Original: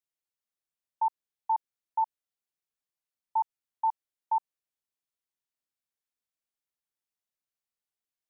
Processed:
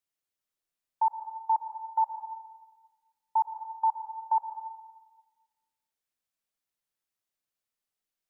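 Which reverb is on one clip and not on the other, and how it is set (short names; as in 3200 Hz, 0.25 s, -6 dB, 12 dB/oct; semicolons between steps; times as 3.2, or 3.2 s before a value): digital reverb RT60 1.3 s, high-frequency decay 0.75×, pre-delay 70 ms, DRR 7 dB; gain +2 dB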